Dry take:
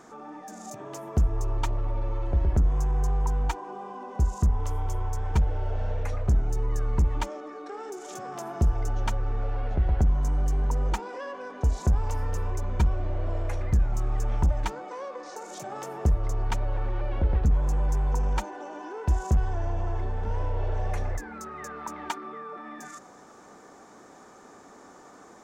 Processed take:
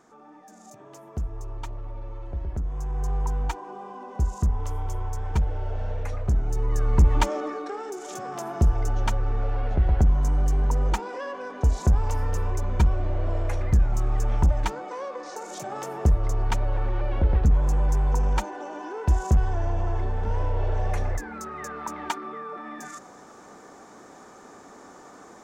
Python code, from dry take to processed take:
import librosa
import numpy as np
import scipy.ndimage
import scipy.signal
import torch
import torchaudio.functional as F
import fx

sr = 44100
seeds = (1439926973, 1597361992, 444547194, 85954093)

y = fx.gain(x, sr, db=fx.line((2.65, -7.5), (3.15, -0.5), (6.35, -0.5), (7.44, 10.0), (7.83, 3.0)))